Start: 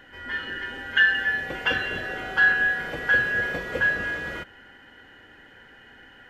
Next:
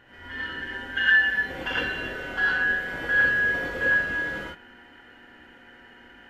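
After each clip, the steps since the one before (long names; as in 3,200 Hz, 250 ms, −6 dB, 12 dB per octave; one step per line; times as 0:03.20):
hum with harmonics 120 Hz, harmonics 24, −55 dBFS −4 dB per octave
reverb whose tail is shaped and stops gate 130 ms rising, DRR −5.5 dB
level −7.5 dB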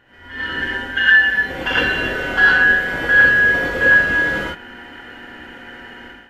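automatic gain control gain up to 13.5 dB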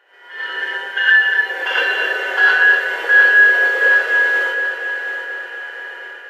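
elliptic high-pass filter 400 Hz, stop band 60 dB
on a send: echo machine with several playback heads 240 ms, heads first and third, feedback 58%, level −10 dB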